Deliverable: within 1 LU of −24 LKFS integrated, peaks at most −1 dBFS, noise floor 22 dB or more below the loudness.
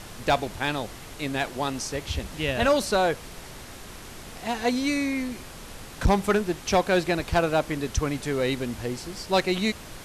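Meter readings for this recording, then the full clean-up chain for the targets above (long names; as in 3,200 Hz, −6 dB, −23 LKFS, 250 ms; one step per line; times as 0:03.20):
share of clipped samples 0.5%; peaks flattened at −14.0 dBFS; background noise floor −42 dBFS; target noise floor −49 dBFS; integrated loudness −26.5 LKFS; sample peak −14.0 dBFS; target loudness −24.0 LKFS
→ clipped peaks rebuilt −14 dBFS
noise reduction from a noise print 7 dB
level +2.5 dB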